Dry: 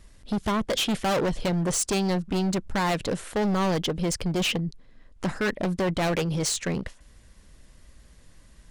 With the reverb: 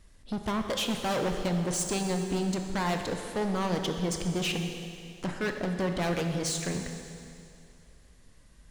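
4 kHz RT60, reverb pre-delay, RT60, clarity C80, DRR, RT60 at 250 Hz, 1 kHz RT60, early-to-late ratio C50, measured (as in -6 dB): 2.5 s, 20 ms, 2.5 s, 6.5 dB, 4.5 dB, 2.5 s, 2.5 s, 5.5 dB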